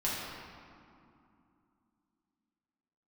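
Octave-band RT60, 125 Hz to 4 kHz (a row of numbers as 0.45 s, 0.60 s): 3.1 s, 3.8 s, 2.5 s, 2.7 s, 1.9 s, 1.4 s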